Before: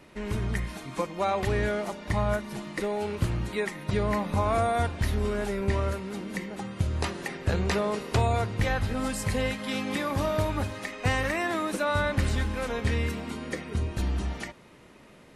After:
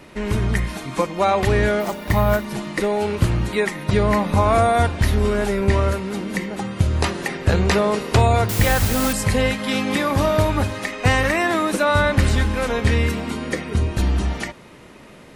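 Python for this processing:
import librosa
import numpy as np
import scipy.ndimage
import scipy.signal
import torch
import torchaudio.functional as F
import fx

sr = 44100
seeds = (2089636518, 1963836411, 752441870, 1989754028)

y = fx.resample_bad(x, sr, factor=3, down='none', up='hold', at=(1.8, 2.45))
y = fx.quant_dither(y, sr, seeds[0], bits=6, dither='triangular', at=(8.49, 9.13))
y = F.gain(torch.from_numpy(y), 9.0).numpy()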